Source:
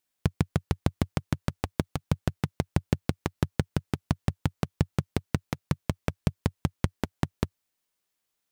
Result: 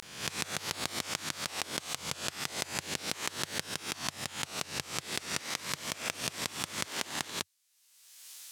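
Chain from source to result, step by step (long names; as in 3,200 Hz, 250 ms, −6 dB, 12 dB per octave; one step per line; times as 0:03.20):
peak hold with a rise ahead of every peak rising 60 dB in 0.42 s
upward compression, threshold −29 dBFS
pitch vibrato 0.35 Hz 92 cents
resonant band-pass 6,800 Hz, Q 0.63
0:04.91–0:07.31: echo with shifted repeats 141 ms, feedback 45%, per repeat +65 Hz, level −11.5 dB
level +7.5 dB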